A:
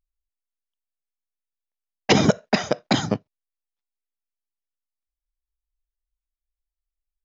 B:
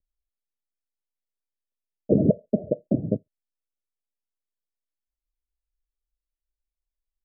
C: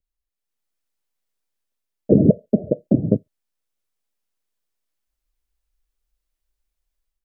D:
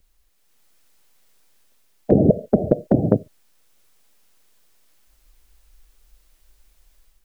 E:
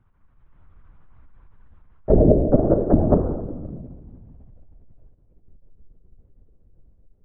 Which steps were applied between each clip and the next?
Butterworth low-pass 630 Hz 96 dB per octave; level −1 dB
dynamic equaliser 640 Hz, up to −5 dB, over −36 dBFS, Q 2.5; automatic gain control gain up to 10 dB
every bin compressed towards the loudest bin 2 to 1
low-pass filter sweep 1,200 Hz → 400 Hz, 0:03.41–0:05.38; rectangular room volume 1,100 cubic metres, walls mixed, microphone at 1.3 metres; linear-prediction vocoder at 8 kHz whisper; level −2.5 dB

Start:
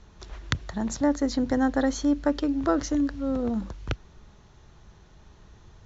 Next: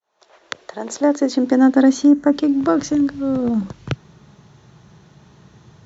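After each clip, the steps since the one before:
fade in at the beginning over 0.95 s
high-pass filter sweep 650 Hz → 140 Hz, 0:00.08–0:02.99
gain on a spectral selection 0:02.07–0:02.33, 2,100–5,700 Hz −11 dB
level +5.5 dB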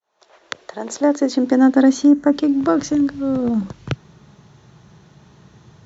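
no processing that can be heard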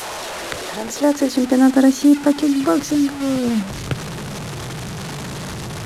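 linear delta modulator 64 kbit/s, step −22.5 dBFS

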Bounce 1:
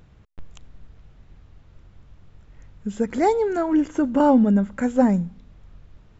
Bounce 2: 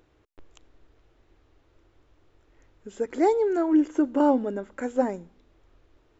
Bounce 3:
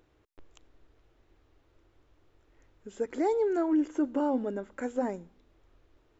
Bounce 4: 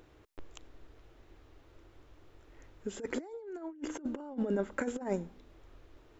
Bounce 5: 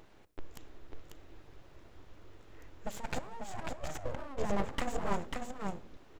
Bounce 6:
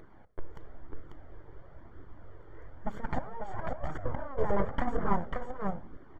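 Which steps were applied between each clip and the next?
low shelf with overshoot 250 Hz −8.5 dB, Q 3; level −5.5 dB
brickwall limiter −16 dBFS, peak gain reduction 6 dB; level −3.5 dB
compressor whose output falls as the input rises −35 dBFS, ratio −0.5
single-tap delay 543 ms −4.5 dB; on a send at −16 dB: convolution reverb RT60 0.50 s, pre-delay 3 ms; on the sum: full-wave rectification; level +2 dB
Savitzky-Golay smoothing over 41 samples; flanger 1 Hz, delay 0.5 ms, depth 1.8 ms, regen −36%; level +8.5 dB

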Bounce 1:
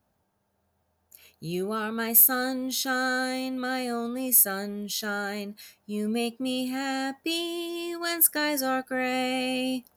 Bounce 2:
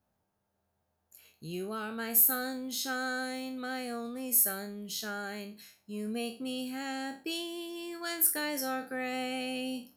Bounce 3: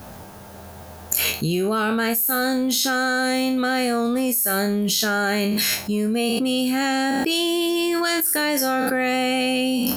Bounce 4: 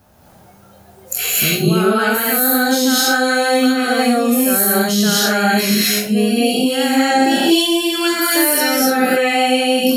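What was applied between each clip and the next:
peak hold with a decay on every bin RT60 0.34 s; level −7.5 dB
envelope flattener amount 100%
reverb whose tail is shaped and stops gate 280 ms rising, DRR −6.5 dB; noise reduction from a noise print of the clip's start 13 dB; level −1 dB

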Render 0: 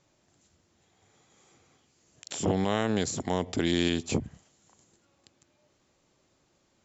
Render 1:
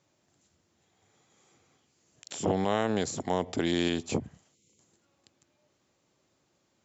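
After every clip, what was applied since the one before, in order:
high-pass filter 75 Hz
gain on a spectral selection 0:04.55–0:04.79, 540–2,000 Hz −21 dB
dynamic equaliser 730 Hz, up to +5 dB, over −39 dBFS, Q 0.71
level −3 dB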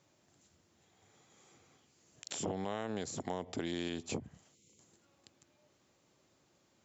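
downward compressor 3 to 1, threshold −39 dBFS, peak gain reduction 12.5 dB
level +1 dB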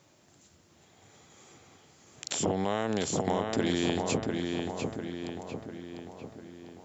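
feedback echo with a low-pass in the loop 698 ms, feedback 56%, low-pass 3,600 Hz, level −3.5 dB
level +8.5 dB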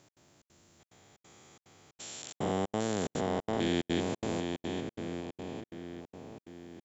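spectrum averaged block by block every 400 ms
gate pattern "x.xxx.xxx" 181 BPM −60 dB

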